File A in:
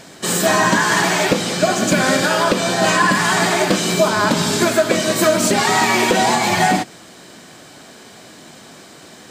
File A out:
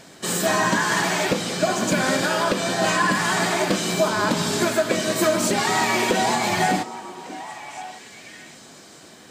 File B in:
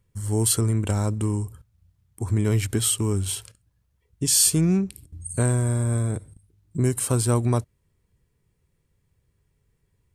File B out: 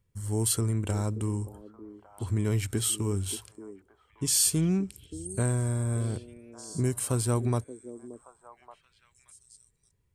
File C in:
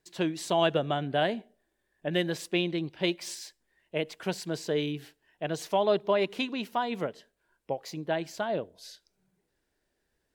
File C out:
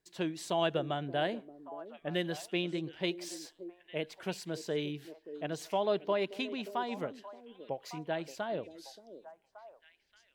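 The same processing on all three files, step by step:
echo through a band-pass that steps 577 ms, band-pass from 350 Hz, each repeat 1.4 octaves, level −9.5 dB
level −5.5 dB

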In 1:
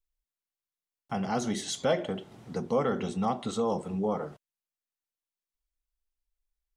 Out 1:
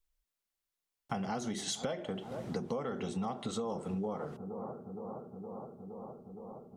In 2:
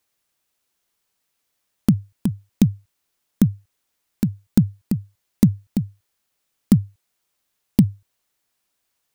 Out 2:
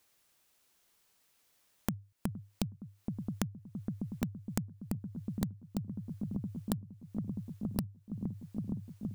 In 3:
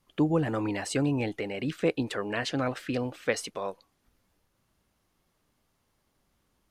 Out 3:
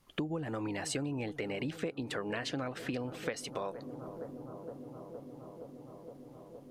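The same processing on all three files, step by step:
bucket-brigade delay 466 ms, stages 4,096, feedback 84%, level −20 dB
downward compressor 16 to 1, threshold −36 dBFS
level +3.5 dB

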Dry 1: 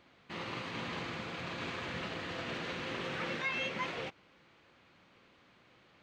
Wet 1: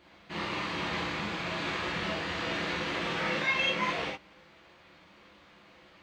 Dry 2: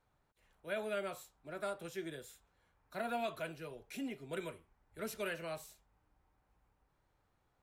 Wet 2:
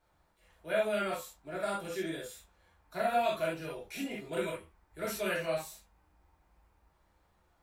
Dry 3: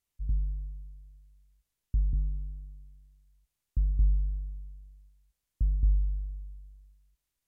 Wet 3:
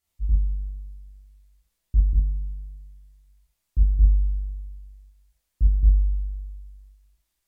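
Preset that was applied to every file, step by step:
parametric band 120 Hz −11.5 dB 0.26 octaves
reverb whose tail is shaped and stops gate 90 ms flat, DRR −4.5 dB
level +1.5 dB

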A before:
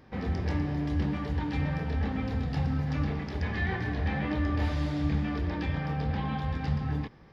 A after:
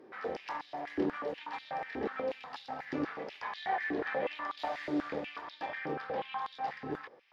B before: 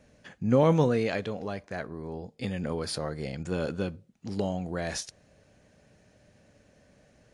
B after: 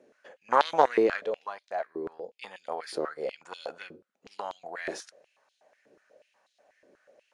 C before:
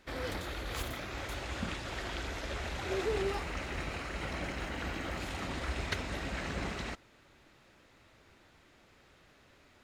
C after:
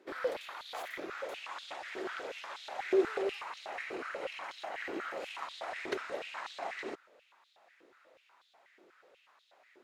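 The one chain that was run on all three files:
harmonic generator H 3 −13 dB, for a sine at −11 dBFS
tilt shelving filter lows +4 dB, about 1,500 Hz
high-pass on a step sequencer 8.2 Hz 370–3,700 Hz
level +4 dB

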